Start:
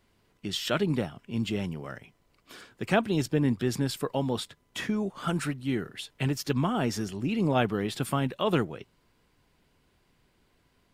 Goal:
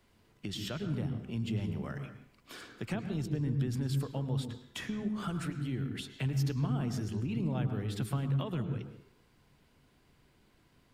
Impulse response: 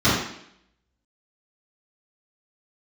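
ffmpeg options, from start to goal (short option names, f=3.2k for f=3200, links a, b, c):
-filter_complex "[0:a]acrossover=split=140[a][b];[b]acompressor=threshold=-39dB:ratio=6[c];[a][c]amix=inputs=2:normalize=0,asplit=2[d][e];[1:a]atrim=start_sample=2205,asetrate=48510,aresample=44100,adelay=101[f];[e][f]afir=irnorm=-1:irlink=0,volume=-29dB[g];[d][g]amix=inputs=2:normalize=0"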